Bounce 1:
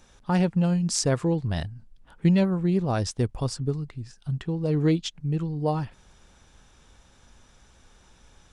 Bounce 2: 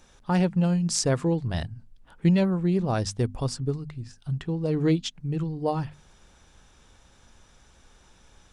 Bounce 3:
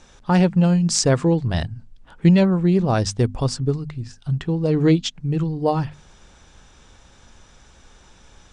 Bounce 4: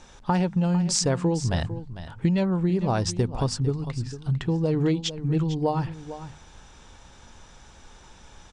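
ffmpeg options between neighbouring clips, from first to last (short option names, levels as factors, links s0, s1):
-af "bandreject=f=50:t=h:w=6,bandreject=f=100:t=h:w=6,bandreject=f=150:t=h:w=6,bandreject=f=200:t=h:w=6,bandreject=f=250:t=h:w=6"
-af "lowpass=f=8800:w=0.5412,lowpass=f=8800:w=1.3066,volume=2.11"
-af "equalizer=f=890:w=4.6:g=4.5,acompressor=threshold=0.0891:ratio=4,aecho=1:1:451:0.224"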